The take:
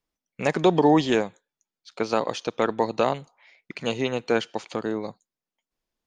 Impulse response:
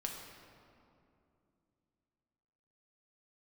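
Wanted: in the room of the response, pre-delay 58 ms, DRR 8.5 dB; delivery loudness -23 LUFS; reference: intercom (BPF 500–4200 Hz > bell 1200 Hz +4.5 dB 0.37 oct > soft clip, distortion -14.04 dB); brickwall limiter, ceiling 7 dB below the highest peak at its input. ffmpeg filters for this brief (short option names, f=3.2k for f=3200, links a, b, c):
-filter_complex "[0:a]alimiter=limit=-14dB:level=0:latency=1,asplit=2[a][b];[1:a]atrim=start_sample=2205,adelay=58[c];[b][c]afir=irnorm=-1:irlink=0,volume=-8.5dB[d];[a][d]amix=inputs=2:normalize=0,highpass=500,lowpass=4.2k,equalizer=f=1.2k:t=o:w=0.37:g=4.5,asoftclip=threshold=-22dB,volume=10.5dB"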